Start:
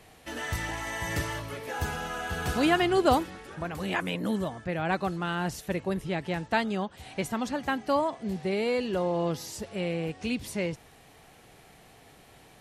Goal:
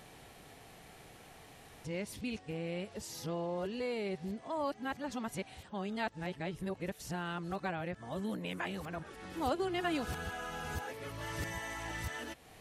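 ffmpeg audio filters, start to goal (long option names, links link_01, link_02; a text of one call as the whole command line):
ffmpeg -i in.wav -af "areverse,acompressor=threshold=-51dB:ratio=1.5" out.wav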